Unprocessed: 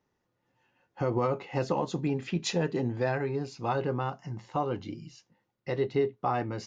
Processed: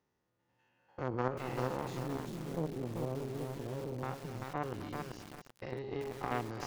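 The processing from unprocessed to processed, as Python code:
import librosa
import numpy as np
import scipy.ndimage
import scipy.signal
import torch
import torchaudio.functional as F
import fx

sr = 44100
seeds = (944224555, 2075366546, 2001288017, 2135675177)

p1 = fx.spec_steps(x, sr, hold_ms=100)
p2 = fx.steep_lowpass(p1, sr, hz=610.0, slope=72, at=(1.97, 4.03))
p3 = fx.over_compress(p2, sr, threshold_db=-42.0, ratio=-1.0)
p4 = p2 + F.gain(torch.from_numpy(p3), -0.5).numpy()
p5 = fx.cheby_harmonics(p4, sr, harmonics=(2, 3), levels_db=(-12, -14), full_scale_db=-15.5)
p6 = p5 + fx.echo_single(p5, sr, ms=258, db=-15.0, dry=0)
p7 = fx.echo_crushed(p6, sr, ms=388, feedback_pct=35, bits=7, wet_db=-3.5)
y = F.gain(torch.from_numpy(p7), -4.5).numpy()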